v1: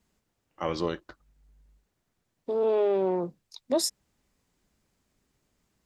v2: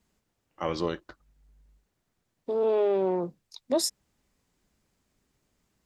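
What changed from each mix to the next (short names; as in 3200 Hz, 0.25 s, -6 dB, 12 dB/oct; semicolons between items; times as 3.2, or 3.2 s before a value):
none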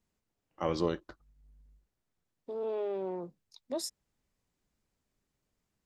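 first voice: add bell 2300 Hz -5 dB 2.6 oct; second voice -10.0 dB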